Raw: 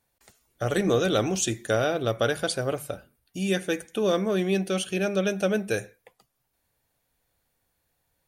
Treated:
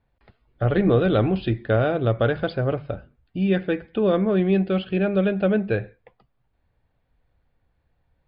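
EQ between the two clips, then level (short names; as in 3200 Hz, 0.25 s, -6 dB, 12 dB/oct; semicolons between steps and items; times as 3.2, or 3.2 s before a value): brick-wall FIR low-pass 5200 Hz; air absorption 370 m; low shelf 120 Hz +12 dB; +3.5 dB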